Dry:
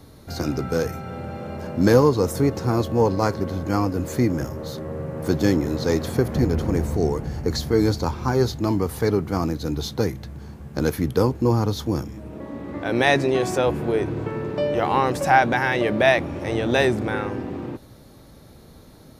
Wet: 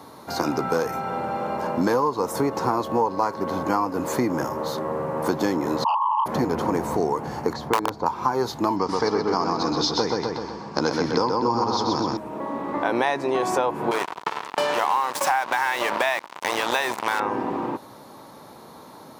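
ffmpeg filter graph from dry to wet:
-filter_complex "[0:a]asettb=1/sr,asplit=3[a][b][c];[a]atrim=end=5.844[d];[b]atrim=start=5.84:end=6.26,asetpts=PTS-STARTPTS,afade=t=in:d=0.004:c=qsin,afade=t=out:st=0.416:d=0.004:c=qsin,asuperpass=centerf=980:order=20:qfactor=3.2,aeval=exprs='0.0501*sin(PI/2*3.98*val(0)/0.0501)':c=same[e];[c]atrim=start=6.256[f];[d][e]acrossfade=d=0.004:c1=hsin:c2=qsin[g];[g][f]acrossfade=d=0.004:c1=qsin:c2=hsin,asettb=1/sr,asplit=3[h][i][j];[h]atrim=end=7.534[k];[i]atrim=start=7.53:end=8.06,asetpts=PTS-STARTPTS,afade=t=in:d=0.004:c=qsin,afade=t=out:st=0.526:d=0.004:c=qsin,lowpass=f=1k:p=1,equalizer=f=260:w=1.7:g=-3,aeval=exprs='(mod(3.76*val(0)+1,2)-1)/3.76':c=same[l];[j]atrim=start=8.056[m];[k][l]acrossfade=d=0.004:c1=hsin:c2=qsin[n];[n][m]acrossfade=d=0.004:c1=qsin:c2=hsin,asettb=1/sr,asplit=3[o][p][q];[o]atrim=end=8.764[r];[p]atrim=start=8.76:end=12.17,asetpts=PTS-STARTPTS,afade=t=in:d=0.004:c=qsin,afade=t=out:st=3.406:d=0.004:c=qsin,lowpass=f=6.7k:w=0.5412,lowpass=f=6.7k:w=1.3066,equalizer=f=5.1k:t=o:w=0.48:g=14,asplit=2[s][t];[t]adelay=127,lowpass=f=4.7k:p=1,volume=-3dB,asplit=2[u][v];[v]adelay=127,lowpass=f=4.7k:p=1,volume=0.52,asplit=2[w][x];[x]adelay=127,lowpass=f=4.7k:p=1,volume=0.52,asplit=2[y][z];[z]adelay=127,lowpass=f=4.7k:p=1,volume=0.52,asplit=2[aa][ab];[ab]adelay=127,lowpass=f=4.7k:p=1,volume=0.52,asplit=2[ac][ad];[ad]adelay=127,lowpass=f=4.7k:p=1,volume=0.52,asplit=2[ae][af];[af]adelay=127,lowpass=f=4.7k:p=1,volume=0.52[ag];[s][u][w][y][aa][ac][ae][ag]amix=inputs=8:normalize=0,atrim=end_sample=150381[ah];[q]atrim=start=12.166[ai];[r][ah]acrossfade=d=0.004:c1=hsin:c2=qsin[aj];[aj][ai]acrossfade=d=0.004:c1=qsin:c2=hsin,asettb=1/sr,asplit=3[ak][al][am];[ak]atrim=end=13.914[an];[al]atrim=start=13.91:end=17.2,asetpts=PTS-STARTPTS,afade=t=in:d=0.004:c=qsin,afade=t=out:st=3.286:d=0.004:c=qsin,tiltshelf=f=780:g=-8.5,acrusher=bits=3:mix=0:aa=0.5,acompressor=threshold=-23dB:ratio=2:attack=3.2:release=140:knee=1:detection=peak[ao];[am]atrim=start=17.196[ap];[an][ao]acrossfade=d=0.004:c1=hsin:c2=qsin[aq];[aq][ap]acrossfade=d=0.004:c1=qsin:c2=hsin,highpass=210,equalizer=f=970:w=1.9:g=14,acompressor=threshold=-22dB:ratio=6,volume=3dB"

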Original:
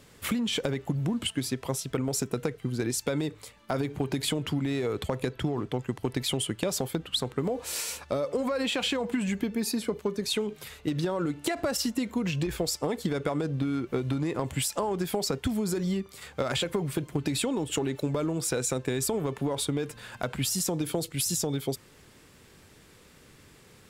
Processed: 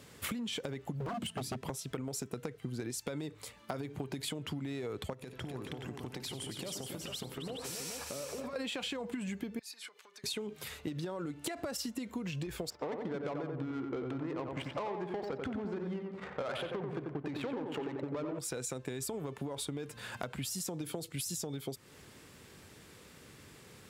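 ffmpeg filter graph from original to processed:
-filter_complex "[0:a]asettb=1/sr,asplit=3[a][b][c];[a]atrim=end=1.004[d];[b]atrim=start=1:end=1.7,asetpts=PTS-STARTPTS,afade=t=in:d=0.004:c=qsin,afade=t=out:st=0.696:d=0.004:c=qsin,equalizer=f=190:w=1.1:g=14.5,aeval=exprs='0.0841*(abs(mod(val(0)/0.0841+3,4)-2)-1)':c=same[e];[c]atrim=start=1.696[f];[d][e]acrossfade=d=0.004:c1=hsin:c2=qsin[g];[g][f]acrossfade=d=0.004:c1=qsin:c2=hsin,asettb=1/sr,asplit=3[h][i][j];[h]atrim=end=5.134[k];[i]atrim=start=5.13:end=8.56,asetpts=PTS-STARTPTS,afade=t=in:d=0.004:c=qsin,afade=t=out:st=3.426:d=0.004:c=qsin,acompressor=threshold=-39dB:ratio=5:attack=3.2:release=140:knee=1:detection=peak,equalizer=f=5.6k:t=o:w=0.25:g=4.5,aecho=1:1:57|92|275|348|426:0.158|0.224|0.447|0.141|0.501,atrim=end_sample=151263[l];[j]atrim=start=8.556[m];[k][l]acrossfade=d=0.004:c1=hsin:c2=qsin[n];[n][m]acrossfade=d=0.004:c1=qsin:c2=hsin,asettb=1/sr,asplit=3[o][p][q];[o]atrim=end=9.594[r];[p]atrim=start=9.59:end=10.24,asetpts=PTS-STARTPTS,afade=t=in:d=0.004:c=qsin,afade=t=out:st=0.646:d=0.004:c=qsin,highshelf=f=10k:g=-11,acompressor=threshold=-36dB:ratio=12:attack=3.2:release=140:knee=1:detection=peak,highpass=1.5k[s];[q]atrim=start=10.236[t];[r][s]acrossfade=d=0.004:c1=hsin:c2=qsin[u];[u][t]acrossfade=d=0.004:c1=qsin:c2=hsin,asettb=1/sr,asplit=3[v][w][x];[v]atrim=end=12.704[y];[w]atrim=start=12.7:end=18.39,asetpts=PTS-STARTPTS,afade=t=in:d=0.004:c=qsin,afade=t=out:st=5.686:d=0.004:c=qsin,asplit=2[z][aa];[aa]highpass=f=720:p=1,volume=16dB,asoftclip=type=tanh:threshold=-15.5dB[ab];[z][ab]amix=inputs=2:normalize=0,lowpass=f=6.5k:p=1,volume=-6dB,adynamicsmooth=sensitivity=1.5:basefreq=690,asplit=2[ac][ad];[ad]adelay=90,lowpass=f=2k:p=1,volume=-4dB,asplit=2[ae][af];[af]adelay=90,lowpass=f=2k:p=1,volume=0.45,asplit=2[ag][ah];[ah]adelay=90,lowpass=f=2k:p=1,volume=0.45,asplit=2[ai][aj];[aj]adelay=90,lowpass=f=2k:p=1,volume=0.45,asplit=2[ak][al];[al]adelay=90,lowpass=f=2k:p=1,volume=0.45,asplit=2[am][an];[an]adelay=90,lowpass=f=2k:p=1,volume=0.45[ao];[ac][ae][ag][ai][ak][am][ao]amix=inputs=7:normalize=0,atrim=end_sample=250929[ap];[x]atrim=start=18.386[aq];[y][ap]acrossfade=d=0.004:c1=hsin:c2=qsin[ar];[ar][aq]acrossfade=d=0.004:c1=qsin:c2=hsin,highpass=62,acompressor=threshold=-36dB:ratio=6"

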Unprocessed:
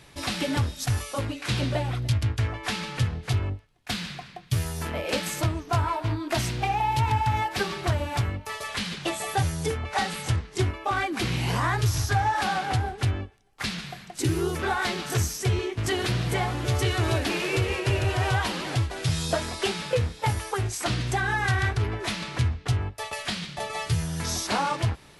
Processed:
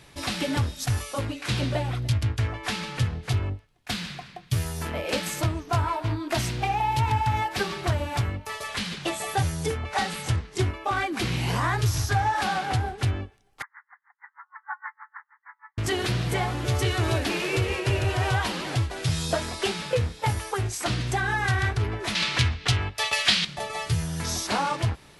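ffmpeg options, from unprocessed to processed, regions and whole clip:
-filter_complex "[0:a]asettb=1/sr,asplit=3[a][b][c];[a]atrim=end=13.624[d];[b]atrim=start=13.62:end=15.78,asetpts=PTS-STARTPTS,afade=t=in:d=0.004:c=qsin,afade=t=out:st=2.156:d=0.004:c=qsin,asuperpass=centerf=1300:order=20:qfactor=1.1,aeval=exprs='val(0)*pow(10,-36*(0.5-0.5*cos(2*PI*6.4*n/s))/20)':c=same[e];[c]atrim=start=15.776[f];[d][e]acrossfade=d=0.004:c1=hsin:c2=qsin[g];[g][f]acrossfade=d=0.004:c1=qsin:c2=hsin,asettb=1/sr,asplit=3[h][i][j];[h]atrim=end=22.154[k];[i]atrim=start=22.15:end=23.45,asetpts=PTS-STARTPTS,afade=t=in:d=0.004:c=qsin,afade=t=out:st=1.296:d=0.004:c=qsin,equalizer=f=3.5k:w=0.42:g=12.5,acompressor=mode=upward:threshold=-34dB:ratio=2.5:attack=3.2:release=140:knee=2.83:detection=peak[l];[j]atrim=start=23.446[m];[k][l]acrossfade=d=0.004:c1=hsin:c2=qsin[n];[n][m]acrossfade=d=0.004:c1=qsin:c2=hsin"

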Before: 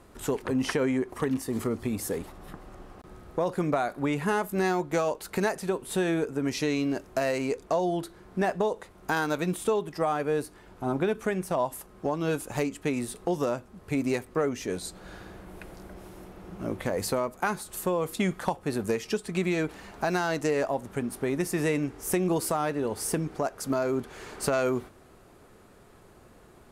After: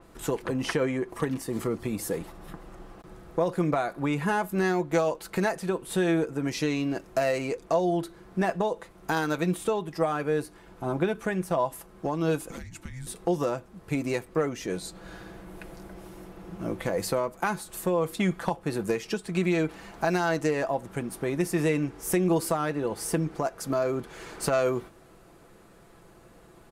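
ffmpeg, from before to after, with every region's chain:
-filter_complex "[0:a]asettb=1/sr,asplit=3[a][b][c];[a]atrim=end=12.504[d];[b]atrim=start=12.5:end=13.07,asetpts=PTS-STARTPTS,afade=t=in:d=0.004:c=qsin,afade=t=out:st=0.566:d=0.004:c=qsin,acompressor=threshold=-35dB:ratio=10:attack=3.2:release=140:knee=1:detection=peak,afreqshift=-380[e];[c]atrim=start=13.066[f];[d][e]acrossfade=d=0.004:c1=hsin:c2=qsin[g];[g][f]acrossfade=d=0.004:c1=qsin:c2=hsin,aecho=1:1:6:0.4,adynamicequalizer=threshold=0.00501:dfrequency=4600:dqfactor=0.7:tfrequency=4600:tqfactor=0.7:attack=5:release=100:ratio=0.375:range=2:mode=cutabove:tftype=highshelf"

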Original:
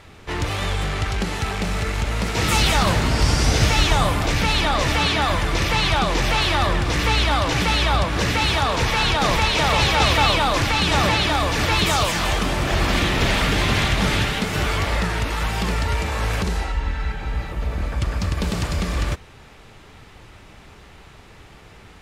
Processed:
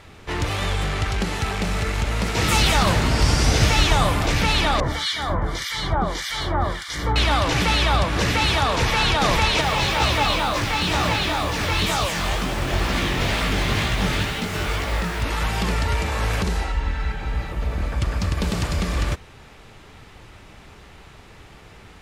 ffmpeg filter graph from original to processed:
-filter_complex "[0:a]asettb=1/sr,asplit=3[a][b][c];[a]atrim=end=4.804[d];[b]atrim=start=4.8:end=7.16,asetpts=PTS-STARTPTS,afade=t=in:d=0.004:c=qsin,afade=t=out:st=2.356:d=0.004:c=qsin,acrossover=split=1500[e][f];[e]aeval=exprs='val(0)*(1-1/2+1/2*cos(2*PI*1.7*n/s))':c=same[g];[f]aeval=exprs='val(0)*(1-1/2-1/2*cos(2*PI*1.7*n/s))':c=same[h];[g][h]amix=inputs=2:normalize=0,asuperstop=centerf=2600:order=4:qfactor=4.1[i];[c]atrim=start=7.156[j];[d][i]acrossfade=d=0.004:c1=hsin:c2=qsin[k];[k][j]acrossfade=d=0.004:c1=qsin:c2=hsin,asettb=1/sr,asplit=3[l][m][n];[l]atrim=end=9.614[o];[m]atrim=start=9.61:end=15.23,asetpts=PTS-STARTPTS,afade=t=in:d=0.004:c=qsin,afade=t=out:st=5.616:d=0.004:c=qsin,acrusher=bits=5:mix=0:aa=0.5,flanger=delay=16:depth=7.6:speed=2.1[p];[n]atrim=start=15.226[q];[o][p]acrossfade=d=0.004:c1=hsin:c2=qsin[r];[r][q]acrossfade=d=0.004:c1=qsin:c2=hsin"

